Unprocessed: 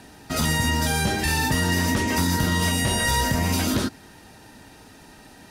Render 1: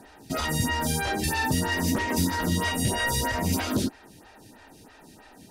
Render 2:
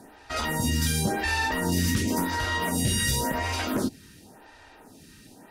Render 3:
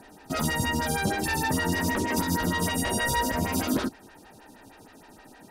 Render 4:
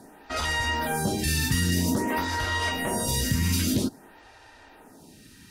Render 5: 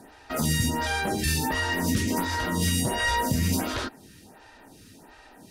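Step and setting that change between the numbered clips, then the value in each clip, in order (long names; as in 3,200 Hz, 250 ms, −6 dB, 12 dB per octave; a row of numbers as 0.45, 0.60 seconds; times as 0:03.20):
phaser with staggered stages, speed: 3.1, 0.93, 6.4, 0.51, 1.4 Hertz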